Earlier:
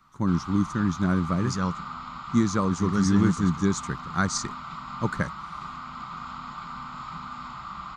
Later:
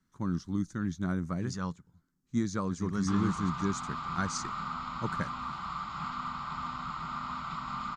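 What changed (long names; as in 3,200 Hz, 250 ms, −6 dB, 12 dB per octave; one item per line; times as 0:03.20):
speech −8.0 dB
background: entry +2.80 s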